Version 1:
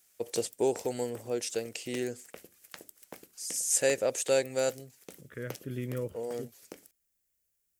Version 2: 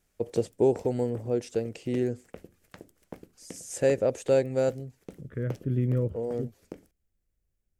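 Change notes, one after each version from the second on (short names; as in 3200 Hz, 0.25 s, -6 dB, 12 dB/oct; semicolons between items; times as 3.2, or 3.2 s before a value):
master: add tilt -4 dB/oct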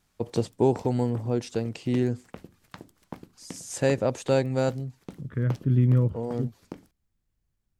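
master: add graphic EQ 125/250/500/1000/4000 Hz +6/+4/-5/+10/+7 dB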